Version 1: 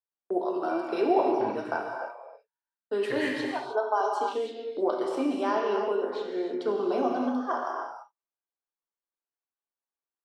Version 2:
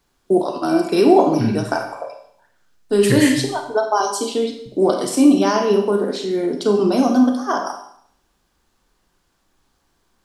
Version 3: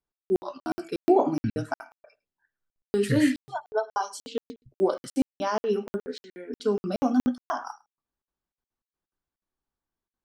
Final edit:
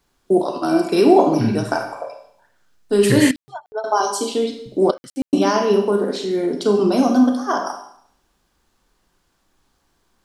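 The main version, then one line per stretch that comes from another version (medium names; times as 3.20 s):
2
3.31–3.84 s: from 3
4.91–5.33 s: from 3
not used: 1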